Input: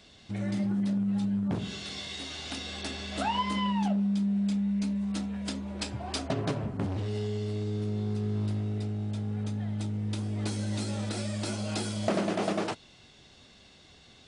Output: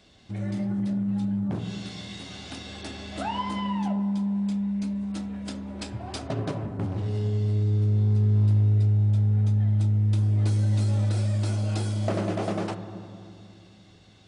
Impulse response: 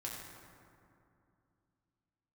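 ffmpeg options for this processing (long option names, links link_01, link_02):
-filter_complex "[0:a]asplit=2[link_01][link_02];[link_02]lowpass=frequency=1300:poles=1[link_03];[1:a]atrim=start_sample=2205,lowpass=4400[link_04];[link_03][link_04]afir=irnorm=-1:irlink=0,volume=-2dB[link_05];[link_01][link_05]amix=inputs=2:normalize=0,volume=-3dB"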